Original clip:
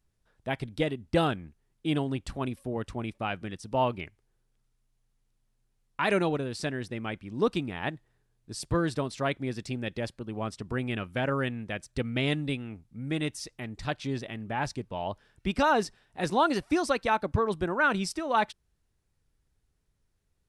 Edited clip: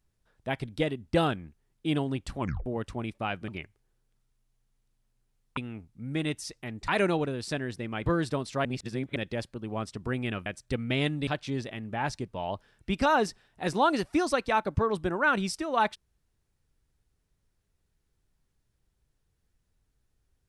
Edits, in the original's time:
2.40 s: tape stop 0.26 s
3.48–3.91 s: delete
7.18–8.71 s: delete
9.30–9.81 s: reverse
11.11–11.72 s: delete
12.53–13.84 s: move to 6.00 s

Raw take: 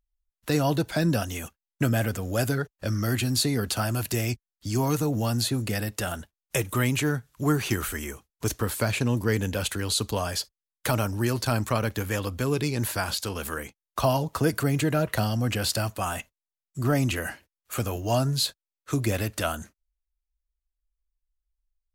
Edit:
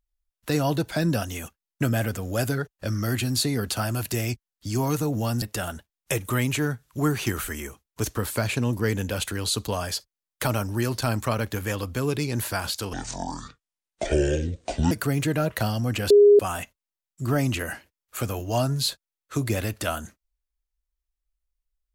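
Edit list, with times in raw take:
5.42–5.86 s: delete
13.37–14.48 s: speed 56%
15.67–15.96 s: bleep 410 Hz -10 dBFS

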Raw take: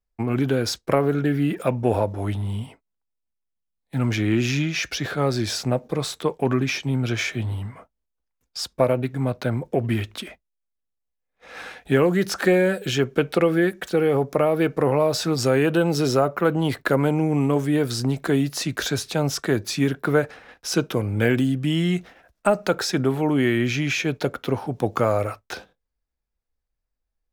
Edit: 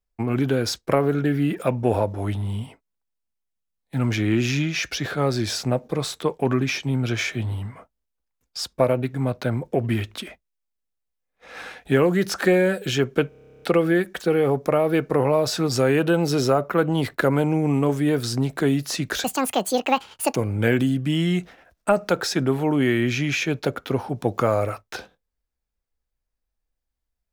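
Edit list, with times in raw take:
13.29 s: stutter 0.03 s, 12 plays
18.91–20.94 s: speed 181%

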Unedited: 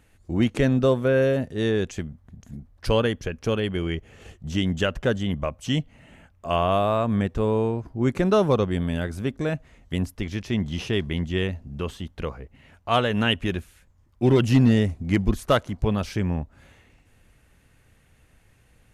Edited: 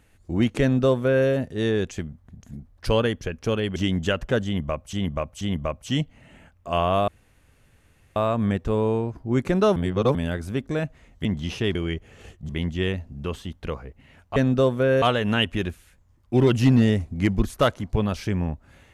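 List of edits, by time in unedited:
0.61–1.27 s: copy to 12.91 s
3.76–4.50 s: move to 11.04 s
5.19–5.67 s: loop, 3 plays
6.86 s: insert room tone 1.08 s
8.46–8.85 s: reverse
9.95–10.54 s: delete

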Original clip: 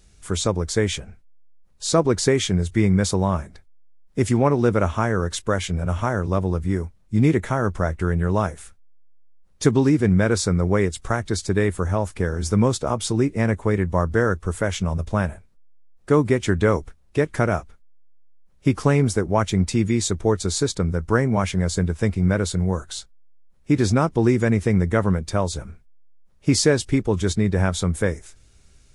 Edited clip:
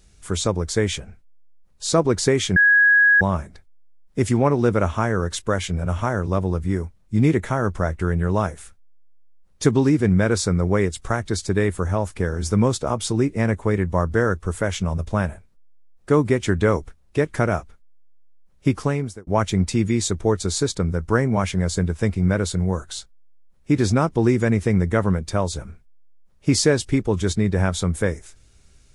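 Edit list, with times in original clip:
2.56–3.21 s: bleep 1.66 kHz -11 dBFS
18.67–19.27 s: fade out

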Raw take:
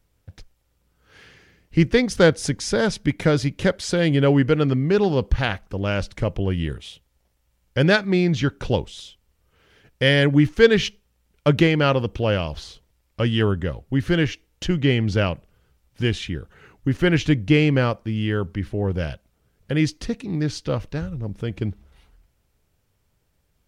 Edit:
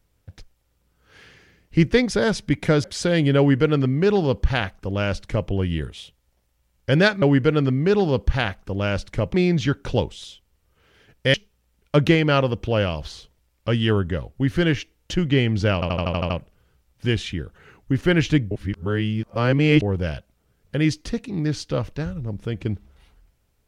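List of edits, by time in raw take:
2.11–2.68 s: delete
3.41–3.72 s: delete
4.26–6.38 s: copy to 8.10 s
10.10–10.86 s: delete
15.26 s: stutter 0.08 s, 8 plays
17.47–18.78 s: reverse

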